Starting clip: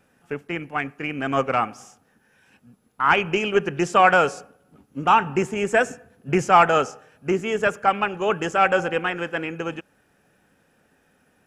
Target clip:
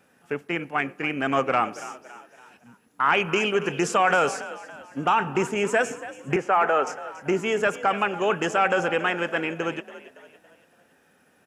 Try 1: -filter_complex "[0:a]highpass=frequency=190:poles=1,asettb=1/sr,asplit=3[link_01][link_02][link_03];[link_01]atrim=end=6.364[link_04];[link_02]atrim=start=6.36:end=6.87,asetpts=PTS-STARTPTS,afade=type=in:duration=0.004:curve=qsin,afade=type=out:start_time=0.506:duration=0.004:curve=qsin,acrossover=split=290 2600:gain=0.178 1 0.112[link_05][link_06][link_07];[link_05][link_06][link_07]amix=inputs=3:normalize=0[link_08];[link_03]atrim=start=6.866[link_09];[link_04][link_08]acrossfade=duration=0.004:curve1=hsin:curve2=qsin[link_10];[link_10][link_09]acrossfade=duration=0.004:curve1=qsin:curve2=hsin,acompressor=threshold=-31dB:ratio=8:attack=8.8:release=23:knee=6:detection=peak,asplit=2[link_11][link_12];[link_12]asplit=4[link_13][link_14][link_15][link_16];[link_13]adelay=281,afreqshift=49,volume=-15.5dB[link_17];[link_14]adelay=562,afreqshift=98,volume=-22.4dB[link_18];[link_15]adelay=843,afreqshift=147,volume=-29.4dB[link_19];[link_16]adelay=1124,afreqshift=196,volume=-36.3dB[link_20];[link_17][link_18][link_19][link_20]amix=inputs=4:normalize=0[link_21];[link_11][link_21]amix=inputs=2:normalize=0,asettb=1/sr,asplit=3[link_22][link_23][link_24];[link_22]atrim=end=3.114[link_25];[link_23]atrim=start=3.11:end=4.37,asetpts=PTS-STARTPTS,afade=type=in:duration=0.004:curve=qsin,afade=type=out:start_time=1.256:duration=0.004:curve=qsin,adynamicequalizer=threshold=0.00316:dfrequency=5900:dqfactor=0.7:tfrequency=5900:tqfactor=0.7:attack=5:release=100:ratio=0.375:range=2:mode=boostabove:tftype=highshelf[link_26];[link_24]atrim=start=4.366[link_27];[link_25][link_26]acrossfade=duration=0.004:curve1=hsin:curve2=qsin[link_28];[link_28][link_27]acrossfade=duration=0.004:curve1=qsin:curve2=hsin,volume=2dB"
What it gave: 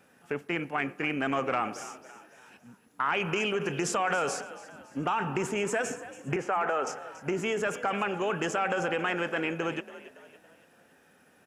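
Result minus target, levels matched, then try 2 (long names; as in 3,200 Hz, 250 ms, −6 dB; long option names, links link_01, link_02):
downward compressor: peak gain reduction +8.5 dB
-filter_complex "[0:a]highpass=frequency=190:poles=1,asettb=1/sr,asplit=3[link_01][link_02][link_03];[link_01]atrim=end=6.364[link_04];[link_02]atrim=start=6.36:end=6.87,asetpts=PTS-STARTPTS,afade=type=in:duration=0.004:curve=qsin,afade=type=out:start_time=0.506:duration=0.004:curve=qsin,acrossover=split=290 2600:gain=0.178 1 0.112[link_05][link_06][link_07];[link_05][link_06][link_07]amix=inputs=3:normalize=0[link_08];[link_03]atrim=start=6.866[link_09];[link_04][link_08]acrossfade=duration=0.004:curve1=hsin:curve2=qsin[link_10];[link_10][link_09]acrossfade=duration=0.004:curve1=qsin:curve2=hsin,acompressor=threshold=-21.5dB:ratio=8:attack=8.8:release=23:knee=6:detection=peak,asplit=2[link_11][link_12];[link_12]asplit=4[link_13][link_14][link_15][link_16];[link_13]adelay=281,afreqshift=49,volume=-15.5dB[link_17];[link_14]adelay=562,afreqshift=98,volume=-22.4dB[link_18];[link_15]adelay=843,afreqshift=147,volume=-29.4dB[link_19];[link_16]adelay=1124,afreqshift=196,volume=-36.3dB[link_20];[link_17][link_18][link_19][link_20]amix=inputs=4:normalize=0[link_21];[link_11][link_21]amix=inputs=2:normalize=0,asettb=1/sr,asplit=3[link_22][link_23][link_24];[link_22]atrim=end=3.114[link_25];[link_23]atrim=start=3.11:end=4.37,asetpts=PTS-STARTPTS,afade=type=in:duration=0.004:curve=qsin,afade=type=out:start_time=1.256:duration=0.004:curve=qsin,adynamicequalizer=threshold=0.00316:dfrequency=5900:dqfactor=0.7:tfrequency=5900:tqfactor=0.7:attack=5:release=100:ratio=0.375:range=2:mode=boostabove:tftype=highshelf[link_26];[link_24]atrim=start=4.366[link_27];[link_25][link_26]acrossfade=duration=0.004:curve1=hsin:curve2=qsin[link_28];[link_28][link_27]acrossfade=duration=0.004:curve1=qsin:curve2=hsin,volume=2dB"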